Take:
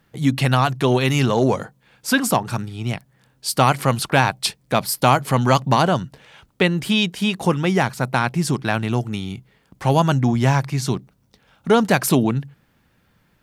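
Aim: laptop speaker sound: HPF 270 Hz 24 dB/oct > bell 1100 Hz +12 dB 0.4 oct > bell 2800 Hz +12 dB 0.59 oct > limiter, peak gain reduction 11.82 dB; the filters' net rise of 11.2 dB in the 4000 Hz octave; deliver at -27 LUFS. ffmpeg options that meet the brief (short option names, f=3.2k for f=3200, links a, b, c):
-af "highpass=f=270:w=0.5412,highpass=f=270:w=1.3066,equalizer=f=1.1k:t=o:w=0.4:g=12,equalizer=f=2.8k:t=o:w=0.59:g=12,equalizer=f=4k:t=o:g=5,volume=-7dB,alimiter=limit=-13.5dB:level=0:latency=1"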